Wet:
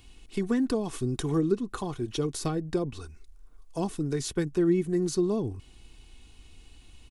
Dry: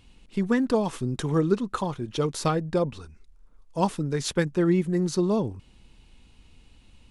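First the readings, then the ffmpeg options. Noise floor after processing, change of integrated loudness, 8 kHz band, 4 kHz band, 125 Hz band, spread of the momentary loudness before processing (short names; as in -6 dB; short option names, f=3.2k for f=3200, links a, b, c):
-54 dBFS, -3.0 dB, -1.0 dB, -3.5 dB, -4.0 dB, 8 LU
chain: -filter_complex "[0:a]highshelf=f=6.1k:g=9,aecho=1:1:2.7:0.45,acrossover=split=350[a][b];[b]acompressor=threshold=-34dB:ratio=5[c];[a][c]amix=inputs=2:normalize=0"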